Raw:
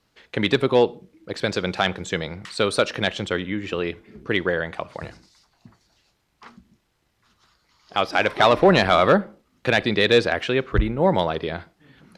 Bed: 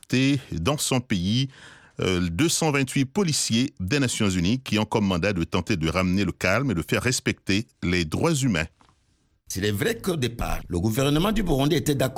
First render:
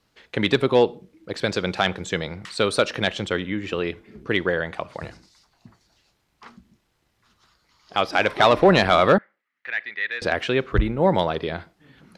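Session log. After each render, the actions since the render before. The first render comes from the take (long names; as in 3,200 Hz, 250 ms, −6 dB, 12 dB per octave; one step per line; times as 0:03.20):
0:09.18–0:10.22: resonant band-pass 1,900 Hz, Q 4.9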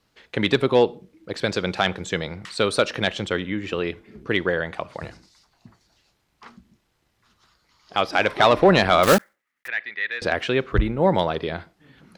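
0:09.03–0:09.70: one scale factor per block 3 bits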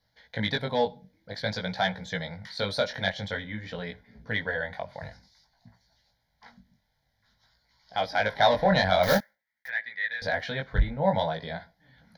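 phaser with its sweep stopped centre 1,800 Hz, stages 8
chorus effect 0.51 Hz, delay 16.5 ms, depth 5 ms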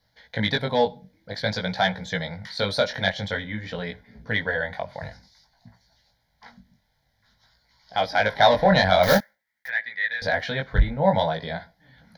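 level +4.5 dB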